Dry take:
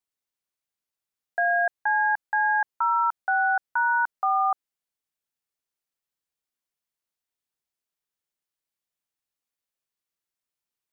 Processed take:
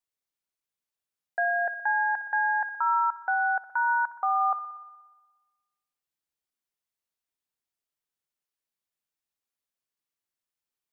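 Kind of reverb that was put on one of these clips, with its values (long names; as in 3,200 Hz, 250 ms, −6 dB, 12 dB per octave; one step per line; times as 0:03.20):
spring reverb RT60 1.3 s, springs 59 ms, chirp 30 ms, DRR 12 dB
level −2.5 dB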